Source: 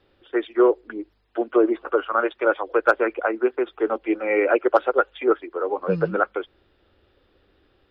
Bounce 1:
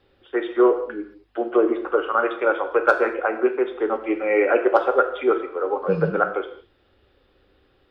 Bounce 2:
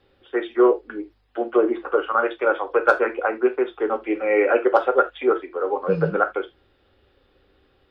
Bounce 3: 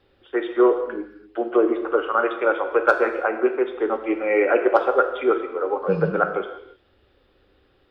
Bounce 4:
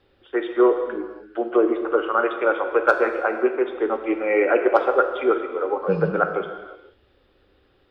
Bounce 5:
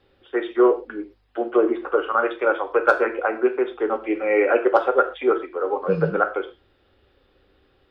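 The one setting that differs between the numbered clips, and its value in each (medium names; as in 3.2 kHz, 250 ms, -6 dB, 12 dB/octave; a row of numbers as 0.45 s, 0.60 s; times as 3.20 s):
gated-style reverb, gate: 250 ms, 100 ms, 370 ms, 540 ms, 150 ms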